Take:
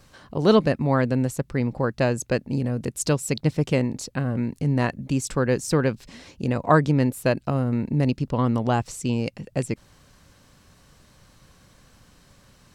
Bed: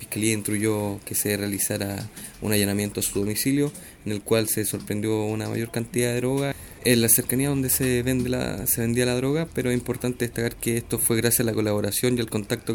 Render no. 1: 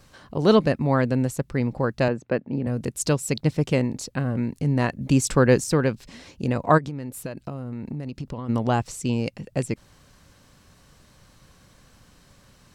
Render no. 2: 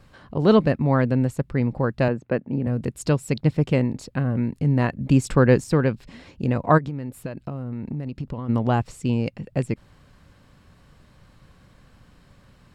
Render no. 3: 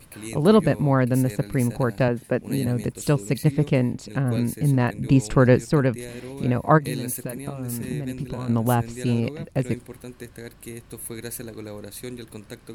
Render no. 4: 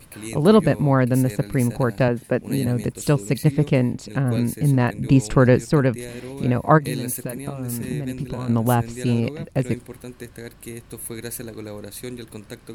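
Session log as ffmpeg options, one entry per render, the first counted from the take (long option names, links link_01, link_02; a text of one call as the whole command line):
ffmpeg -i in.wav -filter_complex "[0:a]asettb=1/sr,asplit=3[link_01][link_02][link_03];[link_01]atrim=end=2.084[link_04];[link_02]atrim=start=2.08:end=2.67,asetpts=PTS-STARTPTS,afade=type=in:duration=0.004:curve=qsin,afade=type=out:start_time=0.586:duration=0.004:curve=qsin,highpass=150,lowpass=2100[link_05];[link_03]atrim=start=2.666[link_06];[link_04][link_05]acrossfade=duration=0.004:curve1=hsin:curve2=qsin[link_07];[link_07][link_06]acrossfade=duration=0.004:curve1=qsin:curve2=hsin,asplit=3[link_08][link_09][link_10];[link_08]afade=type=out:start_time=6.77:duration=0.02[link_11];[link_09]acompressor=threshold=-27dB:ratio=16:attack=3.2:release=140:knee=1:detection=peak,afade=type=in:start_time=6.77:duration=0.02,afade=type=out:start_time=8.48:duration=0.02[link_12];[link_10]afade=type=in:start_time=8.48:duration=0.02[link_13];[link_11][link_12][link_13]amix=inputs=3:normalize=0,asplit=3[link_14][link_15][link_16];[link_14]atrim=end=5.012[link_17];[link_15]atrim=start=5.008:end=5.642,asetpts=PTS-STARTPTS,volume=5dB[link_18];[link_16]atrim=start=5.638[link_19];[link_17][link_18]acrossfade=duration=0.004:curve1=hsin:curve2=hsin[link_20];[link_20][link_19]acrossfade=duration=0.004:curve1=hsin:curve2=hsin" out.wav
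ffmpeg -i in.wav -af "bass=frequency=250:gain=3,treble=frequency=4000:gain=-9,bandreject=frequency=6000:width=14" out.wav
ffmpeg -i in.wav -i bed.wav -filter_complex "[1:a]volume=-13dB[link_01];[0:a][link_01]amix=inputs=2:normalize=0" out.wav
ffmpeg -i in.wav -af "volume=2dB,alimiter=limit=-2dB:level=0:latency=1" out.wav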